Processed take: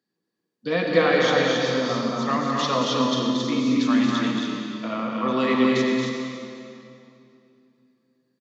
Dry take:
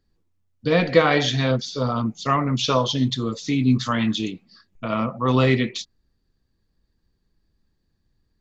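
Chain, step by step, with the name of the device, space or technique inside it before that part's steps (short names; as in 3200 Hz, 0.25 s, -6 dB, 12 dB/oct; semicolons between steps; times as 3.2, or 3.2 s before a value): stadium PA (HPF 180 Hz 24 dB/oct; bell 1700 Hz +4 dB 0.21 oct; loudspeakers at several distances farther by 78 m -5 dB, 94 m -4 dB; reverb RT60 2.8 s, pre-delay 70 ms, DRR 2 dB); gain -5 dB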